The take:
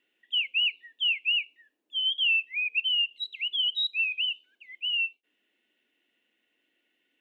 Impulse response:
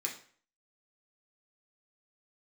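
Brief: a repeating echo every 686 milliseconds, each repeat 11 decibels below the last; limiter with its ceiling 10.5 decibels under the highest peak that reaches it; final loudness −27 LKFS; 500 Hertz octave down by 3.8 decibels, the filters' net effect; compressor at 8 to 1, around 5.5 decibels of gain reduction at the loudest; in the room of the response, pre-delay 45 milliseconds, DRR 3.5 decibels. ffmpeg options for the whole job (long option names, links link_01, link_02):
-filter_complex "[0:a]equalizer=frequency=500:width_type=o:gain=-5,acompressor=threshold=-28dB:ratio=8,alimiter=level_in=9.5dB:limit=-24dB:level=0:latency=1,volume=-9.5dB,aecho=1:1:686|1372|2058:0.282|0.0789|0.0221,asplit=2[link_01][link_02];[1:a]atrim=start_sample=2205,adelay=45[link_03];[link_02][link_03]afir=irnorm=-1:irlink=0,volume=-5.5dB[link_04];[link_01][link_04]amix=inputs=2:normalize=0,volume=9dB"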